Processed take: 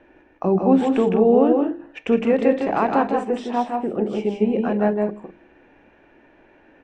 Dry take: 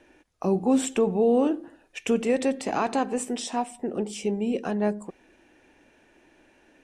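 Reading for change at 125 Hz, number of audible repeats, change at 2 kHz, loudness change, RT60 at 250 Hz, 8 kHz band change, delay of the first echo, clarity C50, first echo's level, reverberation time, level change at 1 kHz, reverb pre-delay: +6.0 dB, 2, +4.5 dB, +6.0 dB, none, under -15 dB, 0.158 s, none, -4.5 dB, none, +7.0 dB, none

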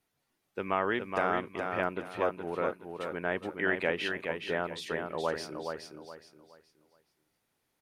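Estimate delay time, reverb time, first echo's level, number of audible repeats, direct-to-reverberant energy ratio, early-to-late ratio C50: 0.42 s, none, -5.5 dB, 3, none, none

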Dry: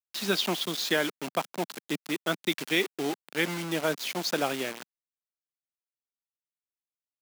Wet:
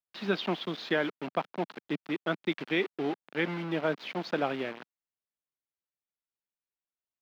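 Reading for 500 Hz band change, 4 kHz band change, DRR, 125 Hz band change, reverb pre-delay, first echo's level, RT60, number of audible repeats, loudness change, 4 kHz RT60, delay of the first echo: -1.0 dB, -8.5 dB, none, -0.5 dB, none, none, none, none, -3.0 dB, none, none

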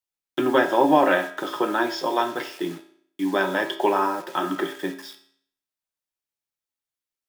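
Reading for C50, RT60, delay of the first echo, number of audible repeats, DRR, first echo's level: 11.5 dB, 0.60 s, none, none, 6.0 dB, none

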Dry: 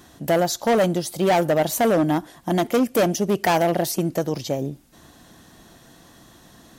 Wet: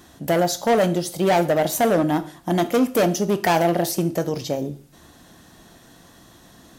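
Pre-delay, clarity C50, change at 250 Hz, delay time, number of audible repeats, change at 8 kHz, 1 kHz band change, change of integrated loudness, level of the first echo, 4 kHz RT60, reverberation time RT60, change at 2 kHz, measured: 11 ms, 16.5 dB, +0.5 dB, none, none, +0.5 dB, +0.5 dB, +0.5 dB, none, 0.40 s, 0.45 s, +0.5 dB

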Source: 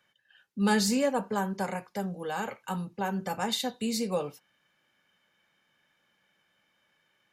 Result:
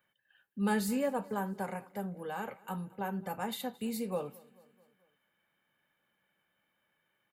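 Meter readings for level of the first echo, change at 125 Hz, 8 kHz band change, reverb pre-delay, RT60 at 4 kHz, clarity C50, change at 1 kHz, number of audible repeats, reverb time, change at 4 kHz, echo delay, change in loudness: -23.0 dB, -5.0 dB, -10.0 dB, none, none, none, -5.5 dB, 3, none, -12.0 dB, 0.219 s, -5.5 dB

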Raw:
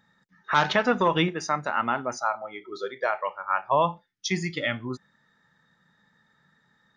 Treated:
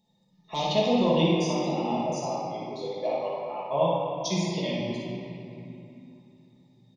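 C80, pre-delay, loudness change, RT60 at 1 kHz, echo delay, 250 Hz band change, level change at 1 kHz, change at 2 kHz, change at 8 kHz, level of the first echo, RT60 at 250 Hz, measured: -0.5 dB, 5 ms, -1.0 dB, 2.9 s, 58 ms, +4.0 dB, -5.0 dB, -12.0 dB, 0.0 dB, -3.5 dB, 3.8 s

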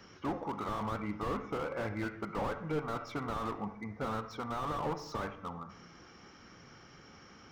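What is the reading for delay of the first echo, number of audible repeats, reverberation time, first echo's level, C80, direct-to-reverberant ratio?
none, none, 0.75 s, none, 14.5 dB, 10.0 dB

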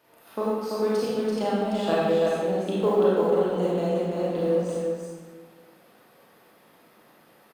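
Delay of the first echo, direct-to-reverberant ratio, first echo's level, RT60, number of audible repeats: 0.337 s, -8.0 dB, -4.5 dB, 1.4 s, 1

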